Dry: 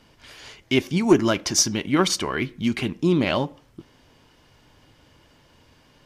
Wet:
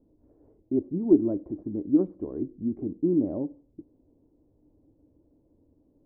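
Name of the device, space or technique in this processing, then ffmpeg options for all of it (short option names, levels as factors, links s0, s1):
under water: -af "lowpass=f=550:w=0.5412,lowpass=f=550:w=1.3066,equalizer=f=140:t=o:w=0.57:g=-6.5,equalizer=f=300:t=o:w=0.33:g=10,volume=0.447"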